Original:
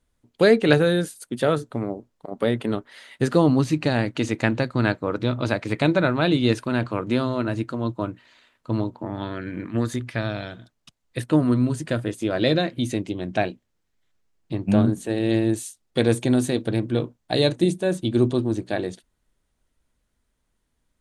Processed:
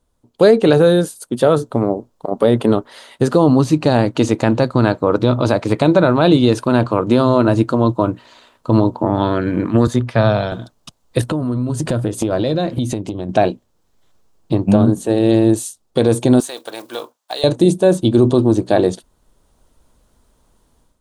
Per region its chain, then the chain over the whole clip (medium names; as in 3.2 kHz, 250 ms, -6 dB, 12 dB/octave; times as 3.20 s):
9.87–10.52 s: low-pass 3.7 kHz 6 dB/octave + peaking EQ 310 Hz -9 dB 0.29 oct + three bands expanded up and down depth 40%
11.21–13.29 s: bass shelf 130 Hz +9 dB + compression 12:1, threshold -31 dBFS + tape noise reduction on one side only encoder only
16.40–17.44 s: block-companded coder 7-bit + high-pass 1 kHz + compression 2:1, threshold -33 dBFS
whole clip: ten-band graphic EQ 500 Hz +3 dB, 1 kHz +5 dB, 2 kHz -9 dB; level rider; loudness maximiser +5.5 dB; trim -1 dB